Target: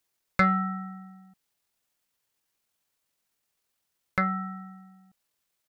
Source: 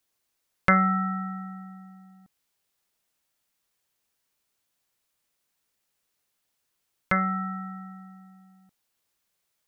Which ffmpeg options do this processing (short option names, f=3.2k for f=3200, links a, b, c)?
-af "acontrast=63,atempo=1.7,volume=-7dB"